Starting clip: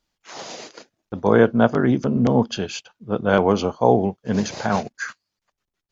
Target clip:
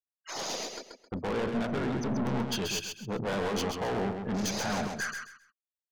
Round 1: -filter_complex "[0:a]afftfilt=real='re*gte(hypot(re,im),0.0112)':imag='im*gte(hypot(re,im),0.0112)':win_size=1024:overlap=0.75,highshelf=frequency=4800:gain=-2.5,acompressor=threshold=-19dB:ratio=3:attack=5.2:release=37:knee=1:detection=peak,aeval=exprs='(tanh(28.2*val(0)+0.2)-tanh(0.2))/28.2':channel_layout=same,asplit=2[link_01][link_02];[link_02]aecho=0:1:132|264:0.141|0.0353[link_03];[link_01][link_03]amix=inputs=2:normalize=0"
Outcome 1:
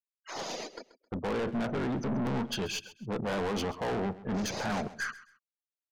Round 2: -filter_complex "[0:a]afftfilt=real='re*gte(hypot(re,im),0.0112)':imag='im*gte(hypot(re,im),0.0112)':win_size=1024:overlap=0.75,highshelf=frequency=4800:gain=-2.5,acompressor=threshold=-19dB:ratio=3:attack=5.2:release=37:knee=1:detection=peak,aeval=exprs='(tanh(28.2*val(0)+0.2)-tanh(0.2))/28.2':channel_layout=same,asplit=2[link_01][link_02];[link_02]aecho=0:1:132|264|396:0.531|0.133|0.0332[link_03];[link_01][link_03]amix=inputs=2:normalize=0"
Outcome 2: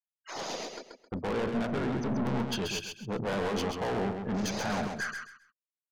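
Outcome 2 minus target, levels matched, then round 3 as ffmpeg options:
8,000 Hz band −4.5 dB
-filter_complex "[0:a]afftfilt=real='re*gte(hypot(re,im),0.0112)':imag='im*gte(hypot(re,im),0.0112)':win_size=1024:overlap=0.75,highshelf=frequency=4800:gain=7.5,acompressor=threshold=-19dB:ratio=3:attack=5.2:release=37:knee=1:detection=peak,aeval=exprs='(tanh(28.2*val(0)+0.2)-tanh(0.2))/28.2':channel_layout=same,asplit=2[link_01][link_02];[link_02]aecho=0:1:132|264|396:0.531|0.133|0.0332[link_03];[link_01][link_03]amix=inputs=2:normalize=0"

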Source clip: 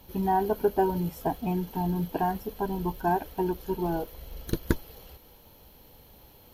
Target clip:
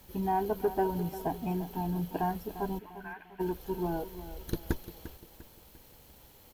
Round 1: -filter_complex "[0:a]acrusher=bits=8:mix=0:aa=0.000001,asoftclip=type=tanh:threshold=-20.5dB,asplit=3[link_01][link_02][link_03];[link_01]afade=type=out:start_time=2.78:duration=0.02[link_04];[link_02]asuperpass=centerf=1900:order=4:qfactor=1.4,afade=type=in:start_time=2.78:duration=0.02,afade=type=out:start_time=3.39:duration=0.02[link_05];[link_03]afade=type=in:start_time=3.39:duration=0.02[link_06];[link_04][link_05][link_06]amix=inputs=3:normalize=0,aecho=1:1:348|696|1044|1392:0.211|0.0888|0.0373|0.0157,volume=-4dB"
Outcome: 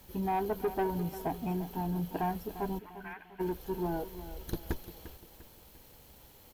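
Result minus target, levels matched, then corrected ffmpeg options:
soft clipping: distortion +9 dB
-filter_complex "[0:a]acrusher=bits=8:mix=0:aa=0.000001,asoftclip=type=tanh:threshold=-12dB,asplit=3[link_01][link_02][link_03];[link_01]afade=type=out:start_time=2.78:duration=0.02[link_04];[link_02]asuperpass=centerf=1900:order=4:qfactor=1.4,afade=type=in:start_time=2.78:duration=0.02,afade=type=out:start_time=3.39:duration=0.02[link_05];[link_03]afade=type=in:start_time=3.39:duration=0.02[link_06];[link_04][link_05][link_06]amix=inputs=3:normalize=0,aecho=1:1:348|696|1044|1392:0.211|0.0888|0.0373|0.0157,volume=-4dB"

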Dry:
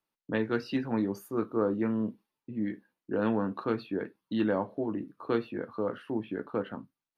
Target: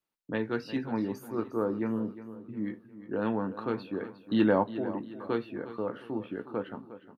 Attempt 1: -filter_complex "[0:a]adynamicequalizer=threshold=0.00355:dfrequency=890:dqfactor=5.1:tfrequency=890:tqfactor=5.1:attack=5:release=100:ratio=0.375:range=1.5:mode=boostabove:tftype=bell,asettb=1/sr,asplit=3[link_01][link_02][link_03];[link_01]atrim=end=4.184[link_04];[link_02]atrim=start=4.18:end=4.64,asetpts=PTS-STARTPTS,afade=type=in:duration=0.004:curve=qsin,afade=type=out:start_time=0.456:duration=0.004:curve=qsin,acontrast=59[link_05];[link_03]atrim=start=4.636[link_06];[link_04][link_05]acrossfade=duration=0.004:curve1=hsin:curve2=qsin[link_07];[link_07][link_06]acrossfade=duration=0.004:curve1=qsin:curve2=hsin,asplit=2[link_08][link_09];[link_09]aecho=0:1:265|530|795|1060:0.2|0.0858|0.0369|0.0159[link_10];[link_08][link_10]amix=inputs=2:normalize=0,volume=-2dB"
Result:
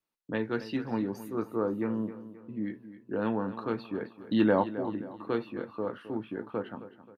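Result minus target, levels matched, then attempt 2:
echo 92 ms early
-filter_complex "[0:a]adynamicequalizer=threshold=0.00355:dfrequency=890:dqfactor=5.1:tfrequency=890:tqfactor=5.1:attack=5:release=100:ratio=0.375:range=1.5:mode=boostabove:tftype=bell,asettb=1/sr,asplit=3[link_01][link_02][link_03];[link_01]atrim=end=4.184[link_04];[link_02]atrim=start=4.18:end=4.64,asetpts=PTS-STARTPTS,afade=type=in:duration=0.004:curve=qsin,afade=type=out:start_time=0.456:duration=0.004:curve=qsin,acontrast=59[link_05];[link_03]atrim=start=4.636[link_06];[link_04][link_05]acrossfade=duration=0.004:curve1=hsin:curve2=qsin[link_07];[link_07][link_06]acrossfade=duration=0.004:curve1=qsin:curve2=hsin,asplit=2[link_08][link_09];[link_09]aecho=0:1:357|714|1071|1428:0.2|0.0858|0.0369|0.0159[link_10];[link_08][link_10]amix=inputs=2:normalize=0,volume=-2dB"

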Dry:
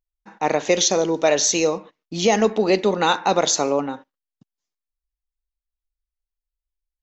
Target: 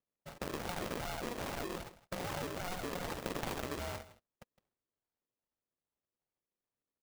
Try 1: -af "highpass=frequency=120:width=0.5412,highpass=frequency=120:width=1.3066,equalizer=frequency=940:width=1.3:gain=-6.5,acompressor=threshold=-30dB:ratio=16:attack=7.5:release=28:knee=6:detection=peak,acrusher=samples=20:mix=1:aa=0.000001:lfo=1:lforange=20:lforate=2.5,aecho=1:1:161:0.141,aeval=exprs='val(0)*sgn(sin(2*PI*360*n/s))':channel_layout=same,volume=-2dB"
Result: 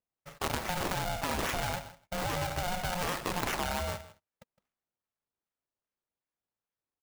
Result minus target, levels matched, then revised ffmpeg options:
sample-and-hold swept by an LFO: distortion −14 dB; downward compressor: peak gain reduction −7 dB
-af "highpass=frequency=120:width=0.5412,highpass=frequency=120:width=1.3066,equalizer=frequency=940:width=1.3:gain=-6.5,acompressor=threshold=-37.5dB:ratio=16:attack=7.5:release=28:knee=6:detection=peak,acrusher=samples=62:mix=1:aa=0.000001:lfo=1:lforange=62:lforate=2.5,aecho=1:1:161:0.141,aeval=exprs='val(0)*sgn(sin(2*PI*360*n/s))':channel_layout=same,volume=-2dB"

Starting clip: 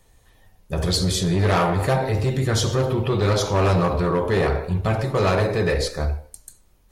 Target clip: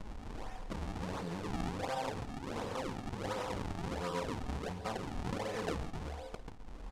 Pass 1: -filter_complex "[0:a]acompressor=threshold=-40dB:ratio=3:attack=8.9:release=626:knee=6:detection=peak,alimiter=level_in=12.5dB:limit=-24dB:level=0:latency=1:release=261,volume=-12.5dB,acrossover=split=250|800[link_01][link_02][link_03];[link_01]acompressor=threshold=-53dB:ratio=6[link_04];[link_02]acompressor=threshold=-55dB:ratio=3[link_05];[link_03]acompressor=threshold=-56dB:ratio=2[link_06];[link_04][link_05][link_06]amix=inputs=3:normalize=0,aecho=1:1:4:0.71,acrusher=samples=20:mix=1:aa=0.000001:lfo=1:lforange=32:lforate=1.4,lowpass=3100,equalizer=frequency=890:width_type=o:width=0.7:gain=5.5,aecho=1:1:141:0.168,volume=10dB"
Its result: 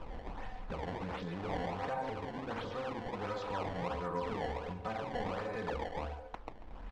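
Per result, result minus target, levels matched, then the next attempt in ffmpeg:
8,000 Hz band −11.5 dB; downward compressor: peak gain reduction +5.5 dB; sample-and-hold swept by an LFO: distortion −6 dB
-filter_complex "[0:a]acompressor=threshold=-40dB:ratio=3:attack=8.9:release=626:knee=6:detection=peak,alimiter=level_in=12.5dB:limit=-24dB:level=0:latency=1:release=261,volume=-12.5dB,acrossover=split=250|800[link_01][link_02][link_03];[link_01]acompressor=threshold=-53dB:ratio=6[link_04];[link_02]acompressor=threshold=-55dB:ratio=3[link_05];[link_03]acompressor=threshold=-56dB:ratio=2[link_06];[link_04][link_05][link_06]amix=inputs=3:normalize=0,aecho=1:1:4:0.71,acrusher=samples=20:mix=1:aa=0.000001:lfo=1:lforange=32:lforate=1.4,lowpass=8200,equalizer=frequency=890:width_type=o:width=0.7:gain=5.5,aecho=1:1:141:0.168,volume=10dB"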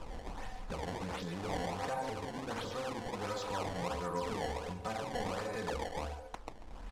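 downward compressor: peak gain reduction +5.5 dB; sample-and-hold swept by an LFO: distortion −6 dB
-filter_complex "[0:a]acompressor=threshold=-31.5dB:ratio=3:attack=8.9:release=626:knee=6:detection=peak,alimiter=level_in=12.5dB:limit=-24dB:level=0:latency=1:release=261,volume=-12.5dB,acrossover=split=250|800[link_01][link_02][link_03];[link_01]acompressor=threshold=-53dB:ratio=6[link_04];[link_02]acompressor=threshold=-55dB:ratio=3[link_05];[link_03]acompressor=threshold=-56dB:ratio=2[link_06];[link_04][link_05][link_06]amix=inputs=3:normalize=0,aecho=1:1:4:0.71,acrusher=samples=20:mix=1:aa=0.000001:lfo=1:lforange=32:lforate=1.4,lowpass=8200,equalizer=frequency=890:width_type=o:width=0.7:gain=5.5,aecho=1:1:141:0.168,volume=10dB"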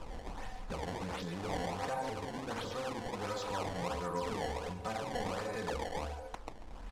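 sample-and-hold swept by an LFO: distortion −6 dB
-filter_complex "[0:a]acompressor=threshold=-31.5dB:ratio=3:attack=8.9:release=626:knee=6:detection=peak,alimiter=level_in=12.5dB:limit=-24dB:level=0:latency=1:release=261,volume=-12.5dB,acrossover=split=250|800[link_01][link_02][link_03];[link_01]acompressor=threshold=-53dB:ratio=6[link_04];[link_02]acompressor=threshold=-55dB:ratio=3[link_05];[link_03]acompressor=threshold=-56dB:ratio=2[link_06];[link_04][link_05][link_06]amix=inputs=3:normalize=0,aecho=1:1:4:0.71,acrusher=samples=50:mix=1:aa=0.000001:lfo=1:lforange=80:lforate=1.4,lowpass=8200,equalizer=frequency=890:width_type=o:width=0.7:gain=5.5,aecho=1:1:141:0.168,volume=10dB"

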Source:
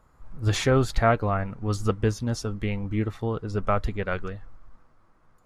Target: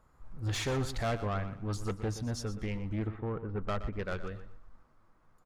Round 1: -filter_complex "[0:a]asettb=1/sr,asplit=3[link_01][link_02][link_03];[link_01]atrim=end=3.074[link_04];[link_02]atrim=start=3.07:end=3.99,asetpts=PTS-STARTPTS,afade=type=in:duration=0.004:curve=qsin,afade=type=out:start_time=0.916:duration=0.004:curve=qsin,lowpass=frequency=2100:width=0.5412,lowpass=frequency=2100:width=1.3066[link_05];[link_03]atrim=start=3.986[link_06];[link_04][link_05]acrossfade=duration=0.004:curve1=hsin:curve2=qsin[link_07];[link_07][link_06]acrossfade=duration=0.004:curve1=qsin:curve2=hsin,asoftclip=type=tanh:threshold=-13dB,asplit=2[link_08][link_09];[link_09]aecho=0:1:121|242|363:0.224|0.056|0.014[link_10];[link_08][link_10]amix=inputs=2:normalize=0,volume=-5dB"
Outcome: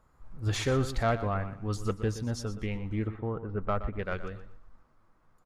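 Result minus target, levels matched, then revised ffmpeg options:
soft clipping: distortion −10 dB
-filter_complex "[0:a]asettb=1/sr,asplit=3[link_01][link_02][link_03];[link_01]atrim=end=3.074[link_04];[link_02]atrim=start=3.07:end=3.99,asetpts=PTS-STARTPTS,afade=type=in:duration=0.004:curve=qsin,afade=type=out:start_time=0.916:duration=0.004:curve=qsin,lowpass=frequency=2100:width=0.5412,lowpass=frequency=2100:width=1.3066[link_05];[link_03]atrim=start=3.986[link_06];[link_04][link_05]acrossfade=duration=0.004:curve1=hsin:curve2=qsin[link_07];[link_07][link_06]acrossfade=duration=0.004:curve1=qsin:curve2=hsin,asoftclip=type=tanh:threshold=-23dB,asplit=2[link_08][link_09];[link_09]aecho=0:1:121|242|363:0.224|0.056|0.014[link_10];[link_08][link_10]amix=inputs=2:normalize=0,volume=-5dB"

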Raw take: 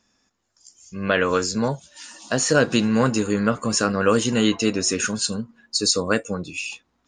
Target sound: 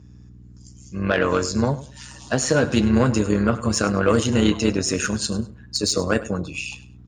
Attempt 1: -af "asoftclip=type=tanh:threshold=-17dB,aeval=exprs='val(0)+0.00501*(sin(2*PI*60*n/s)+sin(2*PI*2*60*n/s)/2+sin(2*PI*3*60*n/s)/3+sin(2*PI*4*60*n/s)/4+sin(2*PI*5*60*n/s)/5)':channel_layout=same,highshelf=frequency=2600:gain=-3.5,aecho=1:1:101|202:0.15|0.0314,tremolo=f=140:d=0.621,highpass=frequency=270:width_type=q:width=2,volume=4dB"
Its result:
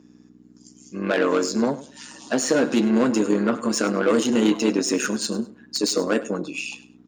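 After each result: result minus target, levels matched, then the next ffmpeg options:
125 Hz band −10.5 dB; soft clipping: distortion +8 dB
-af "asoftclip=type=tanh:threshold=-17dB,aeval=exprs='val(0)+0.00501*(sin(2*PI*60*n/s)+sin(2*PI*2*60*n/s)/2+sin(2*PI*3*60*n/s)/3+sin(2*PI*4*60*n/s)/4+sin(2*PI*5*60*n/s)/5)':channel_layout=same,highshelf=frequency=2600:gain=-3.5,aecho=1:1:101|202:0.15|0.0314,tremolo=f=140:d=0.621,highpass=frequency=87:width_type=q:width=2,volume=4dB"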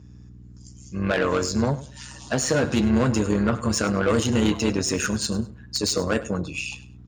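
soft clipping: distortion +8 dB
-af "asoftclip=type=tanh:threshold=-9.5dB,aeval=exprs='val(0)+0.00501*(sin(2*PI*60*n/s)+sin(2*PI*2*60*n/s)/2+sin(2*PI*3*60*n/s)/3+sin(2*PI*4*60*n/s)/4+sin(2*PI*5*60*n/s)/5)':channel_layout=same,highshelf=frequency=2600:gain=-3.5,aecho=1:1:101|202:0.15|0.0314,tremolo=f=140:d=0.621,highpass=frequency=87:width_type=q:width=2,volume=4dB"

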